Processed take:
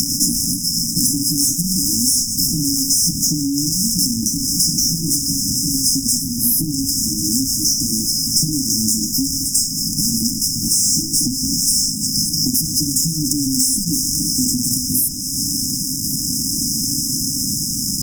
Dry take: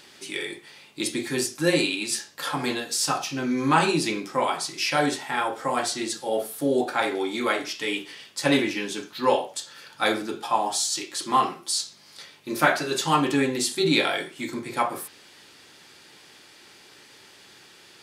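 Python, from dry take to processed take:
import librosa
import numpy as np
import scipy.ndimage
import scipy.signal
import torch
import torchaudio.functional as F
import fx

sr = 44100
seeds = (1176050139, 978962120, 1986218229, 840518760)

p1 = fx.pitch_glide(x, sr, semitones=2.5, runs='ending unshifted')
p2 = fx.over_compress(p1, sr, threshold_db=-29.0, ratio=-0.5)
p3 = p1 + F.gain(torch.from_numpy(p2), 1.0).numpy()
p4 = fx.low_shelf(p3, sr, hz=70.0, db=-10.0)
p5 = p4 + fx.echo_stepped(p4, sr, ms=217, hz=1500.0, octaves=0.7, feedback_pct=70, wet_db=-9.5, dry=0)
p6 = fx.fuzz(p5, sr, gain_db=35.0, gate_db=-43.0)
p7 = fx.brickwall_bandstop(p6, sr, low_hz=300.0, high_hz=5000.0)
p8 = fx.peak_eq(p7, sr, hz=4700.0, db=4.0, octaves=0.46)
p9 = fx.band_squash(p8, sr, depth_pct=100)
y = F.gain(torch.from_numpy(p9), 1.5).numpy()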